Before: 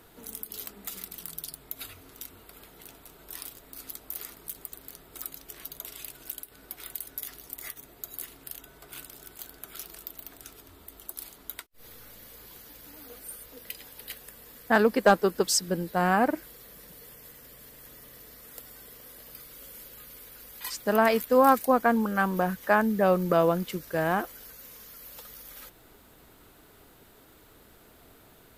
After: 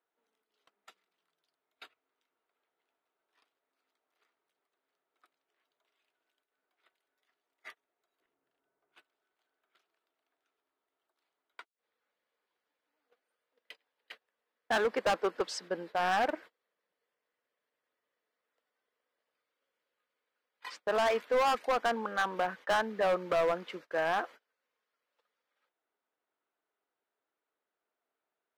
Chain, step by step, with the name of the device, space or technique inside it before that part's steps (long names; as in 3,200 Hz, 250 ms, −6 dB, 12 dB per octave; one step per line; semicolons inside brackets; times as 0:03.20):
walkie-talkie (band-pass filter 520–2,600 Hz; hard clipping −24 dBFS, distortion −6 dB; noise gate −47 dBFS, range −28 dB)
0:08.20–0:08.94: spectral tilt −3.5 dB per octave